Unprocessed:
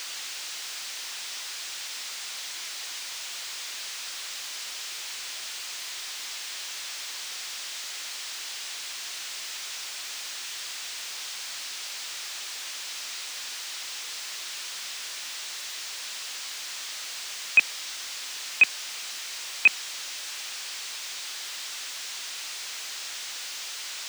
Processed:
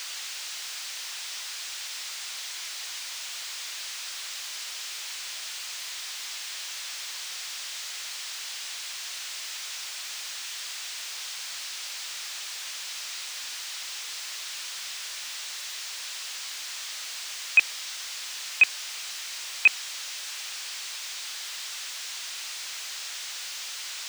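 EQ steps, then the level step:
high-pass filter 580 Hz 6 dB per octave
0.0 dB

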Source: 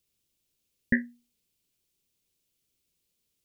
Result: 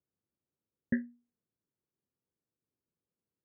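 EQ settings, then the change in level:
high-pass filter 97 Hz 12 dB per octave
low-pass filter 1,500 Hz 24 dB per octave
high-frequency loss of the air 350 metres
−3.5 dB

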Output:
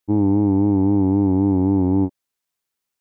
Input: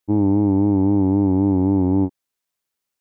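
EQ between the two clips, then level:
notch filter 590 Hz, Q 12
0.0 dB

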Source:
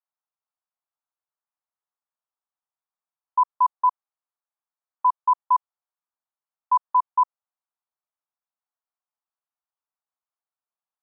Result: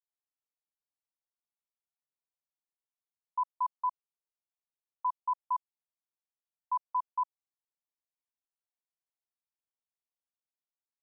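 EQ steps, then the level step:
low-pass filter 1,000 Hz 12 dB per octave
−9.0 dB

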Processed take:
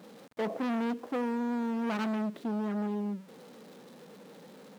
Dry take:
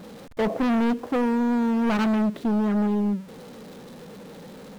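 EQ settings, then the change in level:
high-pass filter 190 Hz 12 dB per octave
−8.0 dB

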